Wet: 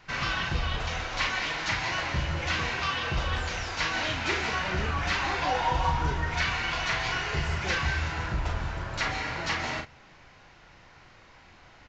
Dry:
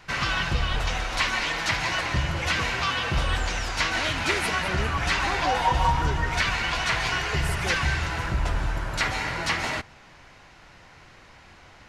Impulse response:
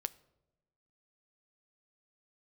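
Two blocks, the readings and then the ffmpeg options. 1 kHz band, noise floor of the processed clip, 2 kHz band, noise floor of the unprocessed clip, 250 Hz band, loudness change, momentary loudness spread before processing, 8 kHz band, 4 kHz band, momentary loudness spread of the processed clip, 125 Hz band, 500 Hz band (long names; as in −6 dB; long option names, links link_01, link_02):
−3.5 dB, −54 dBFS, −3.5 dB, −51 dBFS, −3.5 dB, −3.5 dB, 4 LU, −6.0 dB, −4.0 dB, 4 LU, −3.5 dB, −3.0 dB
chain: -filter_complex "[0:a]asplit=2[link_01][link_02];[link_02]adelay=38,volume=-5dB[link_03];[link_01][link_03]amix=inputs=2:normalize=0,asplit=2[link_04][link_05];[1:a]atrim=start_sample=2205,lowpass=7800[link_06];[link_05][link_06]afir=irnorm=-1:irlink=0,volume=-5dB[link_07];[link_04][link_07]amix=inputs=2:normalize=0,aresample=16000,aresample=44100,volume=-8dB"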